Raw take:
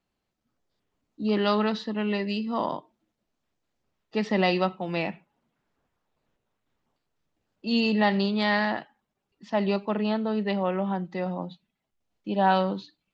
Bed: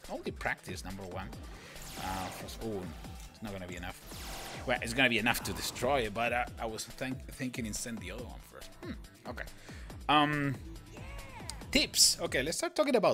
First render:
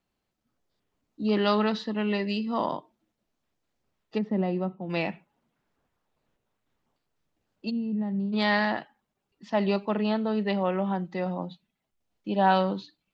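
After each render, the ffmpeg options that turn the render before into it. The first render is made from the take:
-filter_complex "[0:a]asplit=3[a][b][c];[a]afade=t=out:st=4.17:d=0.02[d];[b]bandpass=f=150:t=q:w=0.56,afade=t=in:st=4.17:d=0.02,afade=t=out:st=4.89:d=0.02[e];[c]afade=t=in:st=4.89:d=0.02[f];[d][e][f]amix=inputs=3:normalize=0,asplit=3[g][h][i];[g]afade=t=out:st=7.69:d=0.02[j];[h]bandpass=f=160:t=q:w=2,afade=t=in:st=7.69:d=0.02,afade=t=out:st=8.32:d=0.02[k];[i]afade=t=in:st=8.32:d=0.02[l];[j][k][l]amix=inputs=3:normalize=0"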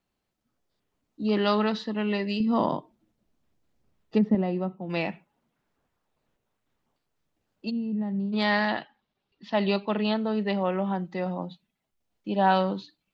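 -filter_complex "[0:a]asettb=1/sr,asplit=3[a][b][c];[a]atrim=end=2.404[d];[b]atrim=start=2.4:end=4.35,asetpts=PTS-STARTPTS,afade=t=in:d=0.004:c=qsin,afade=t=out:st=1.946:d=0.004:c=qsin,lowshelf=f=370:g=9.5[e];[c]atrim=start=4.346[f];[d][e]acrossfade=d=0.004:c1=hsin:c2=qsin[g];[g][f]acrossfade=d=0.004:c1=qsin:c2=hsin,asettb=1/sr,asplit=3[h][i][j];[h]atrim=end=8.684[k];[i]atrim=start=8.68:end=10.14,asetpts=PTS-STARTPTS,afade=t=in:d=0.004:c=qsin,afade=t=out:st=1.456:d=0.004:c=qsin,lowpass=f=3.9k:t=q:w=2.2[l];[j]atrim=start=10.136[m];[k][l]acrossfade=d=0.004:c1=hsin:c2=qsin[n];[n][m]acrossfade=d=0.004:c1=qsin:c2=hsin"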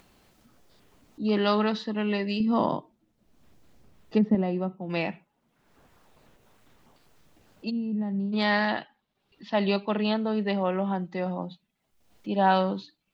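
-af "acompressor=mode=upward:threshold=-43dB:ratio=2.5"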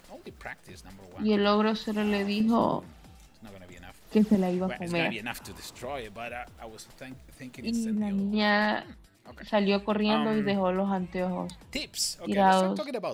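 -filter_complex "[1:a]volume=-6dB[a];[0:a][a]amix=inputs=2:normalize=0"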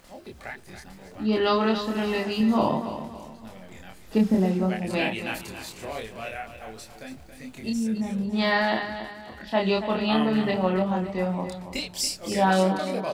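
-filter_complex "[0:a]asplit=2[a][b];[b]adelay=27,volume=-2dB[c];[a][c]amix=inputs=2:normalize=0,aecho=1:1:280|560|840|1120:0.299|0.113|0.0431|0.0164"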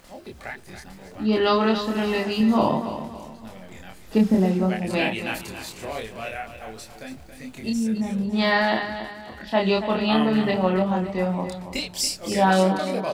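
-af "volume=2.5dB"

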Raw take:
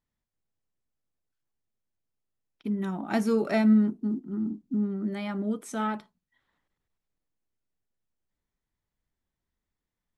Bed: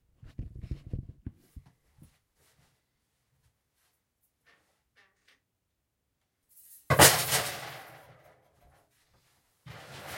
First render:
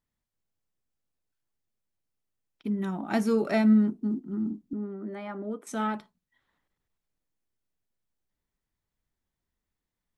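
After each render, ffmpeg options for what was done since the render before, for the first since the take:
-filter_complex "[0:a]asettb=1/sr,asplit=3[a][b][c];[a]atrim=end=4.734[d];[b]atrim=start=4.73:end=5.67,asetpts=PTS-STARTPTS,afade=t=in:d=0.004:c=qsin,afade=t=out:st=0.936:d=0.004:c=qsin,acrossover=split=240 2000:gain=0.0891 1 0.2[e][f][g];[e][f][g]amix=inputs=3:normalize=0[h];[c]atrim=start=5.666[i];[d][h]acrossfade=d=0.004:c1=hsin:c2=qsin[j];[j][i]acrossfade=d=0.004:c1=qsin:c2=hsin"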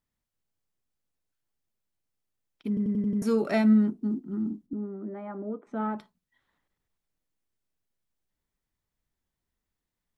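-filter_complex "[0:a]asplit=3[a][b][c];[a]afade=t=out:st=4.66:d=0.02[d];[b]lowpass=1.2k,afade=t=in:st=4.66:d=0.02,afade=t=out:st=5.97:d=0.02[e];[c]afade=t=in:st=5.97:d=0.02[f];[d][e][f]amix=inputs=3:normalize=0,asplit=7[g][h][i][j][k][l][m];[g]atrim=end=2.772[n];[h]atrim=start=2.678:end=2.772[o];[i]atrim=start=2.678:end=2.772[p];[j]atrim=start=2.678:end=2.772[q];[k]atrim=start=2.678:end=2.772[r];[l]atrim=start=2.678:end=2.772[s];[m]atrim=start=3.218[t];[n][o]acrossfade=d=0.004:c1=hsin:c2=hsin[u];[u][p]acrossfade=d=0.004:c1=hsin:c2=hsin[v];[v][q]acrossfade=d=0.004:c1=hsin:c2=hsin[w];[w][r]acrossfade=d=0.004:c1=hsin:c2=hsin[x];[x][s]acrossfade=d=0.004:c1=hsin:c2=hsin[y];[y][t]acrossfade=d=0.004:c1=hsin:c2=hsin"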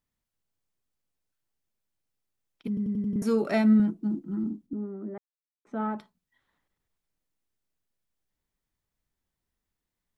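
-filter_complex "[0:a]asettb=1/sr,asplit=3[a][b][c];[a]atrim=end=2.674[d];[b]atrim=start=2.67:end=3.16,asetpts=PTS-STARTPTS,afade=t=in:d=0.004:c=qsin,afade=t=out:st=0.486:d=0.004:c=qsin,acrossover=split=250|3000[e][f][g];[f]acompressor=threshold=-41dB:ratio=6:attack=3.2:release=140:knee=2.83:detection=peak[h];[e][h][g]amix=inputs=3:normalize=0[i];[c]atrim=start=3.156[j];[d][i]acrossfade=d=0.004:c1=hsin:c2=qsin[k];[k][j]acrossfade=d=0.004:c1=qsin:c2=hsin,asettb=1/sr,asplit=3[l][m][n];[l]atrim=end=3.794[o];[m]atrim=start=3.79:end=4.44,asetpts=PTS-STARTPTS,afade=t=in:d=0.004:c=qsin,afade=t=out:st=0.646:d=0.004:c=qsin,aecho=1:1:6.1:0.65,atrim=end_sample=28665[p];[n]atrim=start=4.436[q];[o][p]acrossfade=d=0.004:c1=hsin:c2=qsin[r];[r][q]acrossfade=d=0.004:c1=qsin:c2=hsin,asplit=3[s][t][u];[s]atrim=end=5.18,asetpts=PTS-STARTPTS,afade=t=out:st=5.176:d=0.004:c=hsin[v];[t]atrim=start=5.18:end=5.65,asetpts=PTS-STARTPTS,volume=0[w];[u]atrim=start=5.65,asetpts=PTS-STARTPTS,afade=t=in:d=0.004:c=hsin[x];[v][w][x]concat=n=3:v=0:a=1"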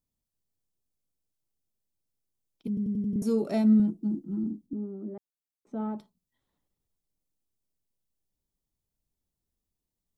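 -af "equalizer=f=1.7k:t=o:w=1.7:g=-14.5"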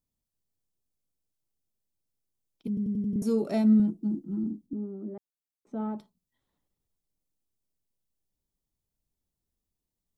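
-af anull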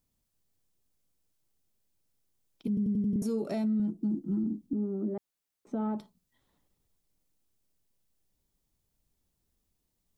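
-filter_complex "[0:a]asplit=2[a][b];[b]acompressor=threshold=-35dB:ratio=6,volume=2dB[c];[a][c]amix=inputs=2:normalize=0,alimiter=limit=-24dB:level=0:latency=1:release=302"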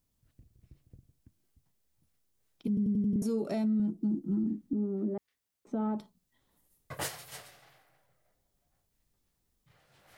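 -filter_complex "[1:a]volume=-19dB[a];[0:a][a]amix=inputs=2:normalize=0"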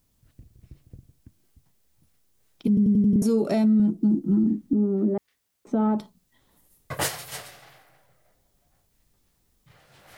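-af "volume=9.5dB"

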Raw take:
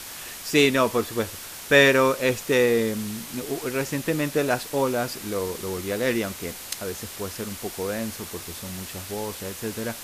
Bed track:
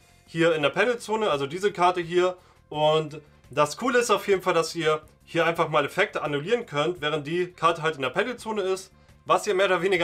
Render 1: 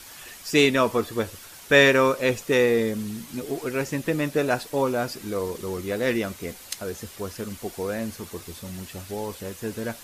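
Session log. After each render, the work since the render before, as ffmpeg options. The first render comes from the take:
-af "afftdn=nr=8:nf=-39"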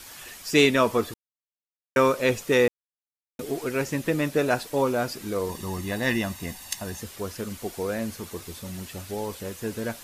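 -filter_complex "[0:a]asettb=1/sr,asplit=3[a][b][c];[a]atrim=end=5.494[d];[b]atrim=start=5.49:end=7.01,asetpts=PTS-STARTPTS,afade=t=in:d=0.004:c=qsin,afade=t=out:st=1.516:d=0.004:c=qsin,aecho=1:1:1.1:0.65,atrim=end_sample=67032[e];[c]atrim=start=7.006[f];[d][e]acrossfade=d=0.004:c1=hsin:c2=qsin[g];[g][f]acrossfade=d=0.004:c1=qsin:c2=hsin,asplit=5[h][i][j][k][l];[h]atrim=end=1.14,asetpts=PTS-STARTPTS,afade=t=out:st=1.136:d=0.004:c=hsin[m];[i]atrim=start=1.14:end=1.96,asetpts=PTS-STARTPTS,volume=0[n];[j]atrim=start=1.96:end=2.68,asetpts=PTS-STARTPTS,afade=t=in:d=0.004:c=hsin,afade=t=out:st=0.716:d=0.004:c=hsin[o];[k]atrim=start=2.68:end=3.39,asetpts=PTS-STARTPTS,volume=0[p];[l]atrim=start=3.39,asetpts=PTS-STARTPTS,afade=t=in:d=0.004:c=hsin[q];[m][n][o][p][q]concat=n=5:v=0:a=1"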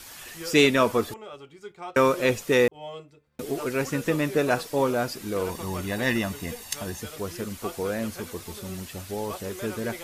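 -filter_complex "[1:a]volume=-17.5dB[a];[0:a][a]amix=inputs=2:normalize=0"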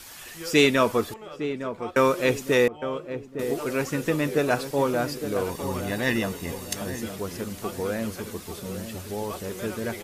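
-filter_complex "[0:a]asplit=2[a][b];[b]adelay=859,lowpass=f=960:p=1,volume=-9dB,asplit=2[c][d];[d]adelay=859,lowpass=f=960:p=1,volume=0.46,asplit=2[e][f];[f]adelay=859,lowpass=f=960:p=1,volume=0.46,asplit=2[g][h];[h]adelay=859,lowpass=f=960:p=1,volume=0.46,asplit=2[i][j];[j]adelay=859,lowpass=f=960:p=1,volume=0.46[k];[a][c][e][g][i][k]amix=inputs=6:normalize=0"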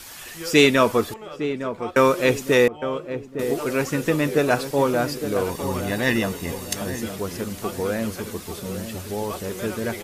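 -af "volume=3.5dB"

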